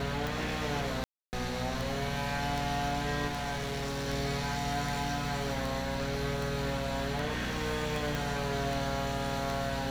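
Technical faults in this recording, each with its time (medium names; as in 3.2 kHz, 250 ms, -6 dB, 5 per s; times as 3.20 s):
hum 60 Hz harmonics 4 -38 dBFS
tick 78 rpm
1.04–1.33 s: dropout 289 ms
3.27–4.09 s: clipped -31 dBFS
8.15 s: pop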